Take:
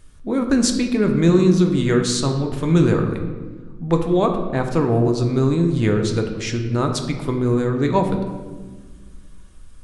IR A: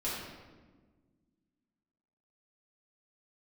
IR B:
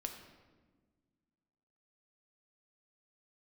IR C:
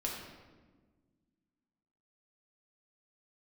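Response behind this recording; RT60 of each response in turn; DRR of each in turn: B; 1.4, 1.4, 1.4 seconds; −9.0, 4.0, −2.5 decibels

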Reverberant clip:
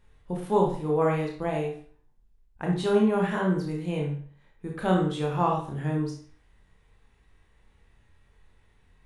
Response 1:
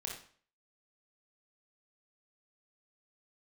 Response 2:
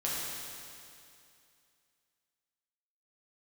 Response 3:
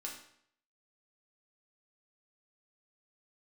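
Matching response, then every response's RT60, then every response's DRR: 1; 0.50, 2.5, 0.65 seconds; −1.0, −7.0, −2.5 decibels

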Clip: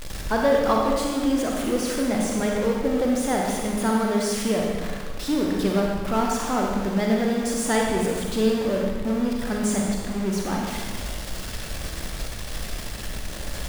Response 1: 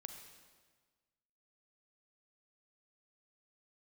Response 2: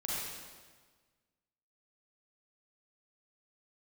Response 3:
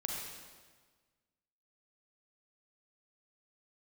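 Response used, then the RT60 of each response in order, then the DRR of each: 3; 1.5, 1.5, 1.5 seconds; 5.0, −6.5, −1.0 decibels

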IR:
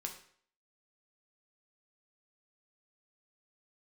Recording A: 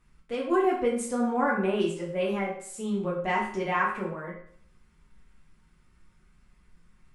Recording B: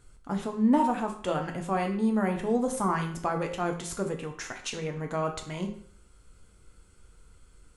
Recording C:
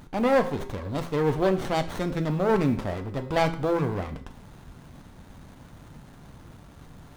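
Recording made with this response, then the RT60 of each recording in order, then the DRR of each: B; 0.55, 0.55, 0.55 seconds; −4.5, 2.5, 7.0 decibels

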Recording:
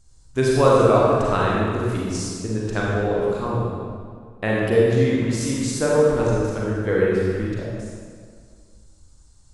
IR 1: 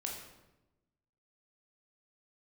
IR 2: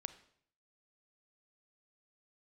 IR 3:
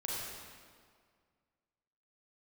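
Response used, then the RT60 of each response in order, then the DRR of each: 3; 1.0, 0.60, 2.0 seconds; −1.0, 12.0, −5.0 decibels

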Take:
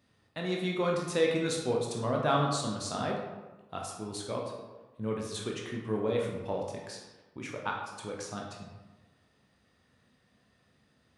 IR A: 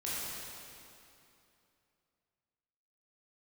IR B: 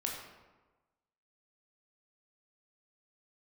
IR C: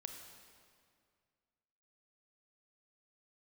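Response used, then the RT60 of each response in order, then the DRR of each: B; 2.8, 1.2, 2.1 seconds; −9.0, −1.5, 4.0 decibels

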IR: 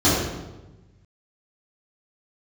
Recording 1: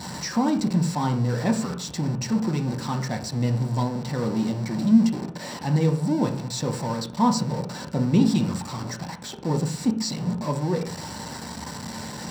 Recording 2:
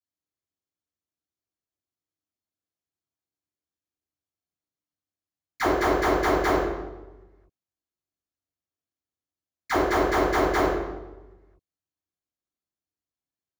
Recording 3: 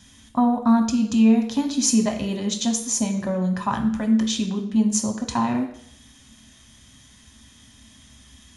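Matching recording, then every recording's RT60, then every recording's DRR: 2; 0.45, 1.1, 0.70 seconds; 2.0, −13.0, 3.0 decibels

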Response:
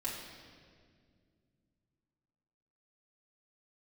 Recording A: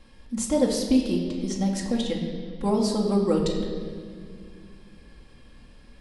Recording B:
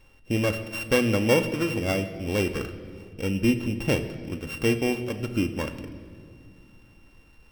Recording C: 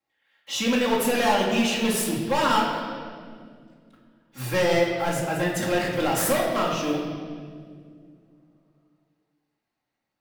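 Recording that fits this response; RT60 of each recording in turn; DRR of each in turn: C; 2.1 s, non-exponential decay, 2.1 s; −2.0, 7.0, −7.0 decibels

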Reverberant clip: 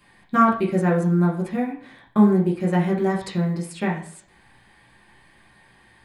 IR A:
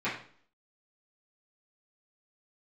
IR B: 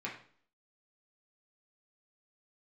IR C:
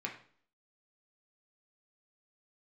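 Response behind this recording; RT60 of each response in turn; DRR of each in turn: B; 0.50, 0.50, 0.50 seconds; −12.5, −4.5, −0.5 decibels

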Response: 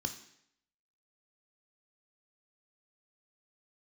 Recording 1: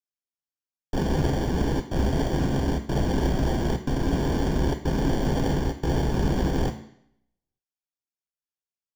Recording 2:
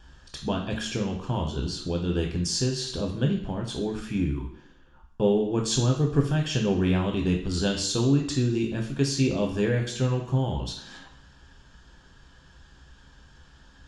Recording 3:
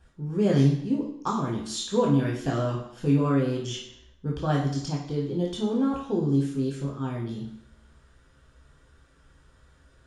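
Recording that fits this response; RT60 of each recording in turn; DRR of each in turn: 1; 0.70, 0.70, 0.70 seconds; 6.5, 1.0, −3.0 decibels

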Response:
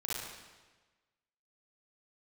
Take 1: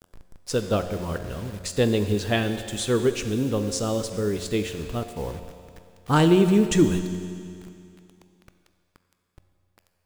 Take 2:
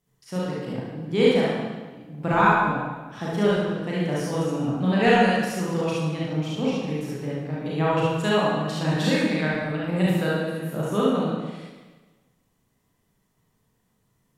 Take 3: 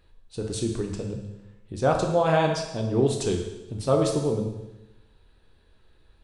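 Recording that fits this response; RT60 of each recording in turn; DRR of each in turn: 2; 2.4, 1.3, 1.0 seconds; 8.0, −7.5, 1.0 decibels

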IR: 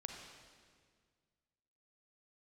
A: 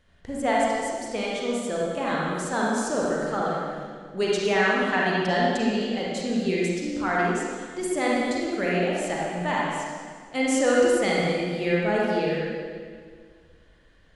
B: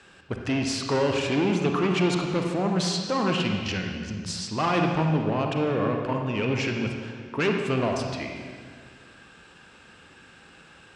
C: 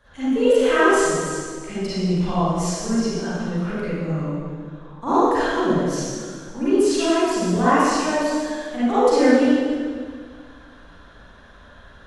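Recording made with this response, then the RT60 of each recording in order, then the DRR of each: B; 1.8, 1.8, 1.8 seconds; −5.0, 2.0, −15.0 decibels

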